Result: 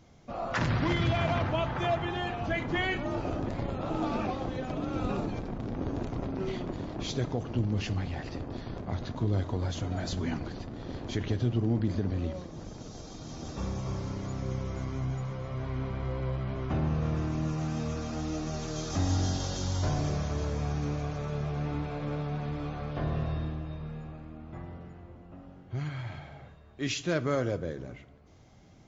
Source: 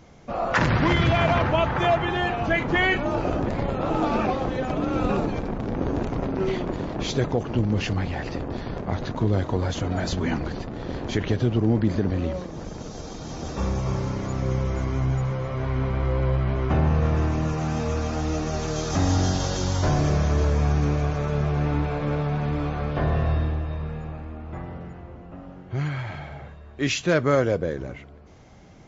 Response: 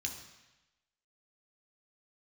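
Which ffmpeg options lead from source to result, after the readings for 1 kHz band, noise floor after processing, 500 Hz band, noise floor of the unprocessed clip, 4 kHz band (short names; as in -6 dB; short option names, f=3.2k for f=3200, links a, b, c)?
-9.0 dB, -52 dBFS, -9.0 dB, -43 dBFS, -6.5 dB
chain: -filter_complex "[0:a]asplit=2[a][b];[1:a]atrim=start_sample=2205,asetrate=52920,aresample=44100[c];[b][c]afir=irnorm=-1:irlink=0,volume=-8dB[d];[a][d]amix=inputs=2:normalize=0,volume=-9dB"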